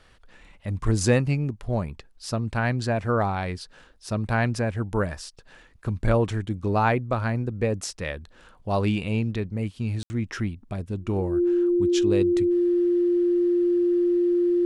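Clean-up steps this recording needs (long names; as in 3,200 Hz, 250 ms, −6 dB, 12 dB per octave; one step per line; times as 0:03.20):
notch filter 350 Hz, Q 30
ambience match 0:10.03–0:10.10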